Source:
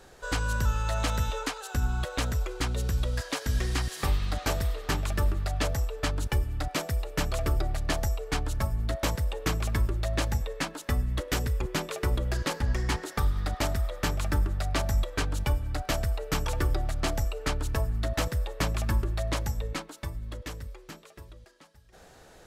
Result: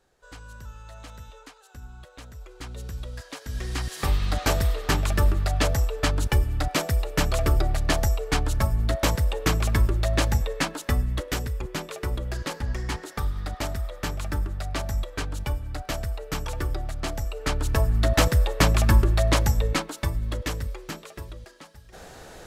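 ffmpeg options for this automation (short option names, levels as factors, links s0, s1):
-af "volume=6.31,afade=t=in:st=2.32:d=0.49:silence=0.398107,afade=t=in:st=3.45:d=0.98:silence=0.237137,afade=t=out:st=10.69:d=0.81:silence=0.446684,afade=t=in:st=17.22:d=0.96:silence=0.298538"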